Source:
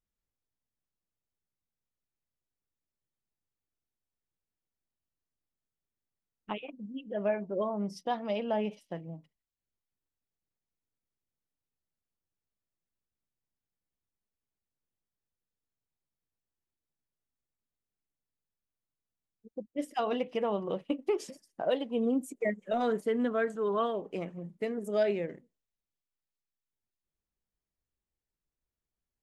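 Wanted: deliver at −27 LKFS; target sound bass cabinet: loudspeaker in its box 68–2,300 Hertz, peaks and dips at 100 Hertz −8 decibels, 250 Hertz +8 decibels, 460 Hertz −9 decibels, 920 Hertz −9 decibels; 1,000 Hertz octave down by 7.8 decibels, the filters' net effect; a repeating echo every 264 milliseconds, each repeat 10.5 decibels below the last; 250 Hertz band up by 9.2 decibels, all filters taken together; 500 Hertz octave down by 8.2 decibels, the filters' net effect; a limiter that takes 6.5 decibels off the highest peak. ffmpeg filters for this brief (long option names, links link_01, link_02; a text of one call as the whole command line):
ffmpeg -i in.wav -af "equalizer=frequency=250:width_type=o:gain=6,equalizer=frequency=500:width_type=o:gain=-5.5,equalizer=frequency=1000:width_type=o:gain=-4.5,alimiter=level_in=0.5dB:limit=-24dB:level=0:latency=1,volume=-0.5dB,highpass=frequency=68:width=0.5412,highpass=frequency=68:width=1.3066,equalizer=frequency=100:width_type=q:width=4:gain=-8,equalizer=frequency=250:width_type=q:width=4:gain=8,equalizer=frequency=460:width_type=q:width=4:gain=-9,equalizer=frequency=920:width_type=q:width=4:gain=-9,lowpass=frequency=2300:width=0.5412,lowpass=frequency=2300:width=1.3066,aecho=1:1:264|528|792:0.299|0.0896|0.0269,volume=4.5dB" out.wav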